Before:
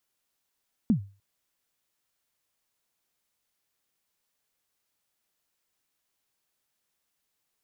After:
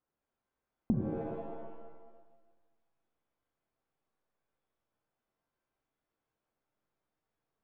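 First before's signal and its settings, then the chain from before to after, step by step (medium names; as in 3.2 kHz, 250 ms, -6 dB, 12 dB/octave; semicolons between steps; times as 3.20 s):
kick drum length 0.30 s, from 250 Hz, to 99 Hz, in 101 ms, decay 0.34 s, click off, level -15 dB
low-pass 1 kHz 12 dB/octave; compression, threshold -27 dBFS; pitch-shifted reverb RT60 1.3 s, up +7 st, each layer -2 dB, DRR 3.5 dB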